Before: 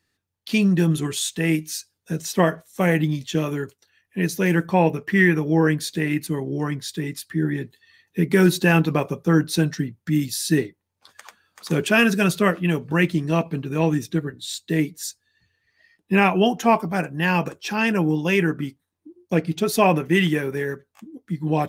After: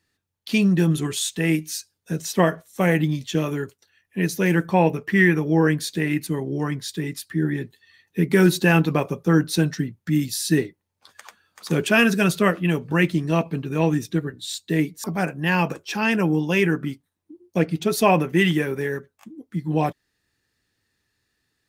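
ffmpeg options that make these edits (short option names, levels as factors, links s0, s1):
-filter_complex "[0:a]asplit=2[s0][s1];[s0]atrim=end=15.042[s2];[s1]atrim=start=16.798[s3];[s2][s3]acrossfade=d=0.004:c1=hsin:c2=hsin"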